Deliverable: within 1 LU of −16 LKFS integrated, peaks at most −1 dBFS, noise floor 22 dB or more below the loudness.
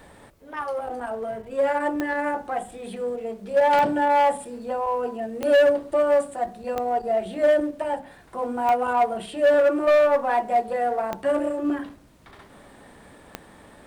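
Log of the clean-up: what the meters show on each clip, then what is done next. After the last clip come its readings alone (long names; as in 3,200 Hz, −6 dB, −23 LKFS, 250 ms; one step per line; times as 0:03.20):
number of clicks 7; integrated loudness −23.5 LKFS; sample peak −10.5 dBFS; target loudness −16.0 LKFS
→ click removal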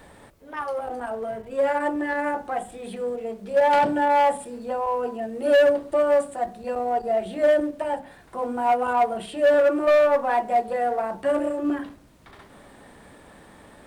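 number of clicks 0; integrated loudness −23.5 LKFS; sample peak −13.0 dBFS; target loudness −16.0 LKFS
→ level +7.5 dB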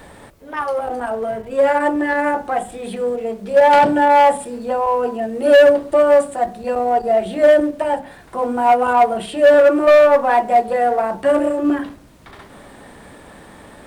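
integrated loudness −16.0 LKFS; sample peak −5.5 dBFS; background noise floor −42 dBFS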